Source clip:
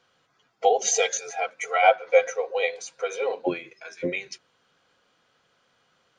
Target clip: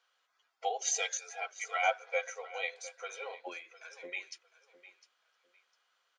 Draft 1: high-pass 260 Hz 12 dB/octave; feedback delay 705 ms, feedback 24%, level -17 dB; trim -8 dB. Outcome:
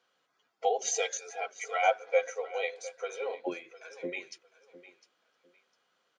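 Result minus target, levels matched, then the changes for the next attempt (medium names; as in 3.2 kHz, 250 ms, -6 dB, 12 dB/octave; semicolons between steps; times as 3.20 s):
250 Hz band +11.5 dB
change: high-pass 860 Hz 12 dB/octave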